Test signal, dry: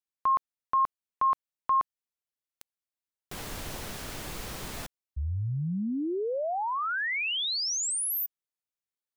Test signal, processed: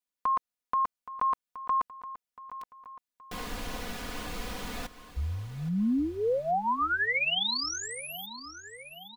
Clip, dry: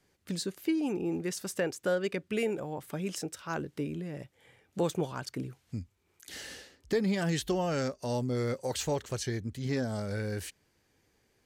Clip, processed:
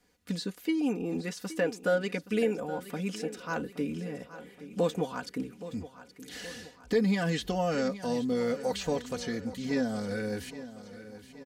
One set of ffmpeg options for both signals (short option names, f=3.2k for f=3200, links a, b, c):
-filter_complex "[0:a]acrossover=split=4900[a][b];[b]acompressor=threshold=-49dB:ratio=4:attack=1:release=60[c];[a][c]amix=inputs=2:normalize=0,aecho=1:1:4.1:0.73,aecho=1:1:822|1644|2466|3288|4110:0.188|0.0998|0.0529|0.028|0.0149"